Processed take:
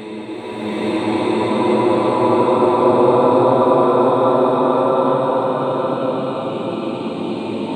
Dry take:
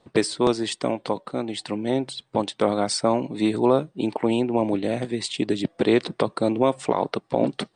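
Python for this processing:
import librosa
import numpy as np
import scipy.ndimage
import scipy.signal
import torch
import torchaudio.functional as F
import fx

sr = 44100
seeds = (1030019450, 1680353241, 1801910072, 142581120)

y = fx.frame_reverse(x, sr, frame_ms=195.0)
y = fx.peak_eq(y, sr, hz=1200.0, db=7.5, octaves=1.9)
y = fx.paulstretch(y, sr, seeds[0], factor=13.0, window_s=0.5, from_s=3.48)
y = fx.rev_bloom(y, sr, seeds[1], attack_ms=880, drr_db=-11.0)
y = y * librosa.db_to_amplitude(-5.0)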